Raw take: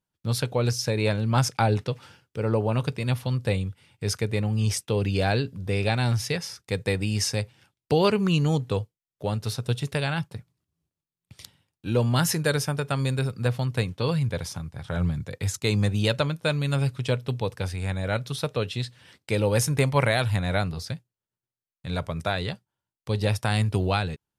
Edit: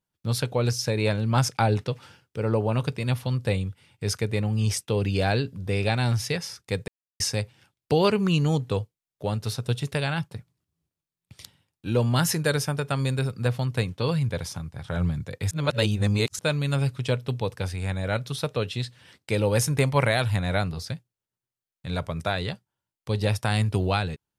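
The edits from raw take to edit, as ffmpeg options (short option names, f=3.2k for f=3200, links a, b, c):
-filter_complex "[0:a]asplit=5[a][b][c][d][e];[a]atrim=end=6.88,asetpts=PTS-STARTPTS,afade=t=out:st=6.876:d=0.004:c=hsin[f];[b]atrim=start=6.88:end=7.2,asetpts=PTS-STARTPTS,volume=0[g];[c]atrim=start=7.2:end=15.512,asetpts=PTS-STARTPTS,afade=t=in:d=0.004:c=hsin[h];[d]atrim=start=15.508:end=16.392,asetpts=PTS-STARTPTS,areverse[i];[e]atrim=start=16.388[j];[f][g][h]concat=n=3:v=0:a=1[k];[k][i]acrossfade=d=0.004:c1=hsin:c2=hsin[l];[l][j]acrossfade=d=0.004:c1=hsin:c2=hsin"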